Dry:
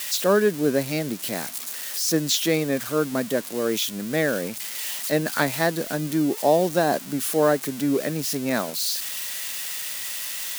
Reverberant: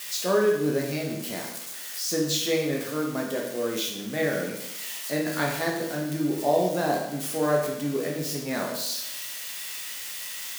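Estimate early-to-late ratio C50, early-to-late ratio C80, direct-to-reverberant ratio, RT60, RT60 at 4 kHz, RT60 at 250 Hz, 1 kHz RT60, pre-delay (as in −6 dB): 4.0 dB, 7.0 dB, −2.0 dB, 0.85 s, 0.75 s, 0.85 s, 0.85 s, 13 ms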